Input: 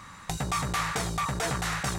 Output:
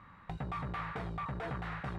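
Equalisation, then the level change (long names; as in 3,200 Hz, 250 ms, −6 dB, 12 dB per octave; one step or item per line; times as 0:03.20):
high-frequency loss of the air 490 metres
−7.0 dB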